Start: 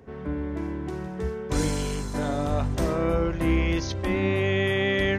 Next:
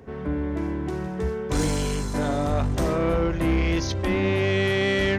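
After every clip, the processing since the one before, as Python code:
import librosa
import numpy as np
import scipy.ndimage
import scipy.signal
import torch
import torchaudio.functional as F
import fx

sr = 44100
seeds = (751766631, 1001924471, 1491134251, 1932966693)

y = 10.0 ** (-20.5 / 20.0) * np.tanh(x / 10.0 ** (-20.5 / 20.0))
y = y * 10.0 ** (4.0 / 20.0)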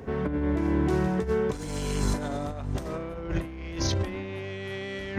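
y = fx.over_compress(x, sr, threshold_db=-28.0, ratio=-0.5)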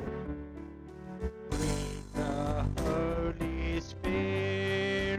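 y = fx.over_compress(x, sr, threshold_db=-33.0, ratio=-0.5)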